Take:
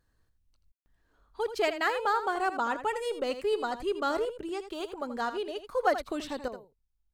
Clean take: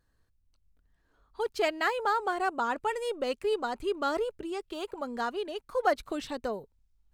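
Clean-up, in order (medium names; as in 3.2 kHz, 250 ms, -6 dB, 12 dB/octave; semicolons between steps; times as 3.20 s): room tone fill 0.72–0.86 s; inverse comb 82 ms -11 dB; trim 0 dB, from 6.48 s +9.5 dB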